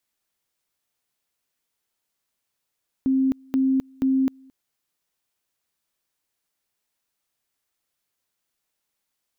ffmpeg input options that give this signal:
-f lavfi -i "aevalsrc='pow(10,(-17-29.5*gte(mod(t,0.48),0.26))/20)*sin(2*PI*265*t)':d=1.44:s=44100"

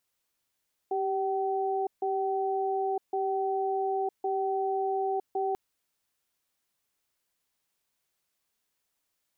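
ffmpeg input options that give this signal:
-f lavfi -i "aevalsrc='0.0355*(sin(2*PI*390*t)+sin(2*PI*765*t))*clip(min(mod(t,1.11),0.96-mod(t,1.11))/0.005,0,1)':d=4.64:s=44100"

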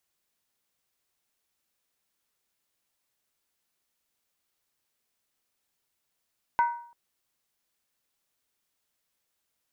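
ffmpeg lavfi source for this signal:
-f lavfi -i "aevalsrc='0.133*pow(10,-3*t/0.54)*sin(2*PI*947*t)+0.0422*pow(10,-3*t/0.428)*sin(2*PI*1509.5*t)+0.0133*pow(10,-3*t/0.369)*sin(2*PI*2022.8*t)+0.00422*pow(10,-3*t/0.356)*sin(2*PI*2174.3*t)+0.00133*pow(10,-3*t/0.332)*sin(2*PI*2512.4*t)':d=0.34:s=44100"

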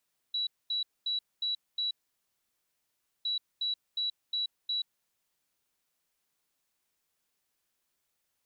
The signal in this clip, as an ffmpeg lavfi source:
-f lavfi -i "aevalsrc='0.0376*sin(2*PI*3920*t)*clip(min(mod(mod(t,2.91),0.36),0.13-mod(mod(t,2.91),0.36))/0.005,0,1)*lt(mod(t,2.91),1.8)':d=5.82:s=44100"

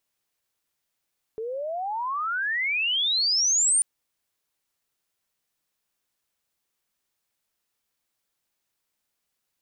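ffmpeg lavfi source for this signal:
-f lavfi -i "aevalsrc='pow(10,(-29+11.5*t/2.44)/20)*sin(2*PI*430*2.44/log(9300/430)*(exp(log(9300/430)*t/2.44)-1))':d=2.44:s=44100"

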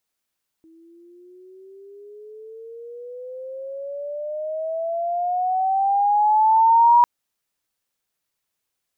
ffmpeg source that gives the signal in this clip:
-f lavfi -i "aevalsrc='pow(10,(-9.5+38*(t/6.4-1))/20)*sin(2*PI*322*6.4/(19*log(2)/12)*(exp(19*log(2)/12*t/6.4)-1))':d=6.4:s=44100"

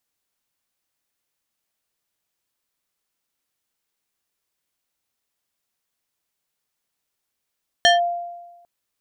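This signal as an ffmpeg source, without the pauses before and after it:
-f lavfi -i "aevalsrc='0.355*pow(10,-3*t/1.17)*sin(2*PI*695*t+1.5*clip(1-t/0.15,0,1)*sin(2*PI*3.55*695*t))':d=0.8:s=44100"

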